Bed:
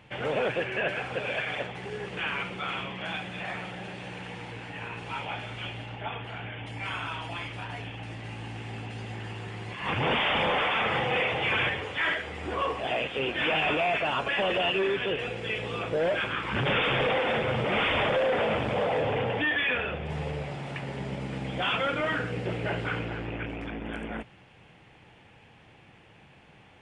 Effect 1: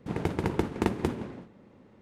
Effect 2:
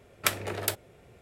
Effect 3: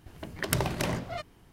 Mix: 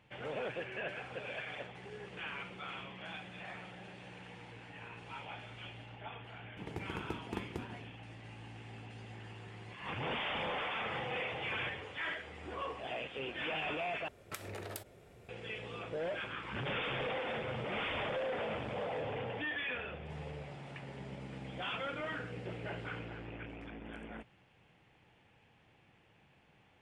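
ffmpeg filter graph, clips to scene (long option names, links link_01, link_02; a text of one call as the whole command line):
ffmpeg -i bed.wav -i cue0.wav -i cue1.wav -filter_complex "[0:a]volume=-11.5dB[link_01];[2:a]acompressor=threshold=-37dB:ratio=6:attack=3.2:release=140:knee=1:detection=peak[link_02];[link_01]asplit=2[link_03][link_04];[link_03]atrim=end=14.084[link_05];[link_02]atrim=end=1.21,asetpts=PTS-STARTPTS,volume=-3dB[link_06];[link_04]atrim=start=15.286[link_07];[1:a]atrim=end=2.01,asetpts=PTS-STARTPTS,volume=-14dB,afade=type=in:duration=0.004:curve=hsin,afade=type=out:start_time=2.006:duration=0.004:curve=hsin,adelay=6510[link_08];[link_05][link_06]acrossfade=duration=0.004:curve1=hsin:curve2=hsin[link_09];[link_09][link_07]acrossfade=duration=0.004:curve1=hsin:curve2=hsin[link_10];[link_10][link_08]amix=inputs=2:normalize=0" out.wav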